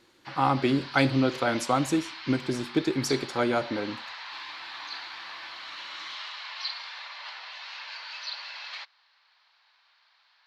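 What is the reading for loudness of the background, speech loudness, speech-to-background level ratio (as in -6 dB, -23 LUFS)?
-38.0 LUFS, -27.0 LUFS, 11.0 dB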